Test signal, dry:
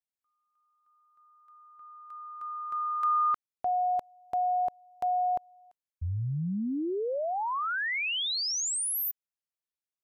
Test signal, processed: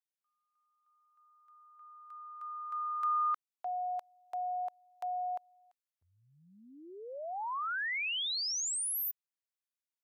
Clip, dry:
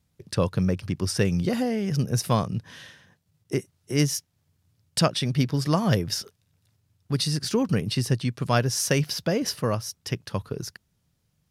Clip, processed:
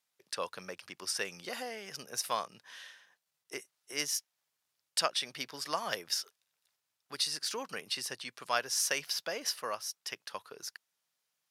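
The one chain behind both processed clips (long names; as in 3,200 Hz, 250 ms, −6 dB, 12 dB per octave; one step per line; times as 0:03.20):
high-pass filter 830 Hz 12 dB per octave
level −4 dB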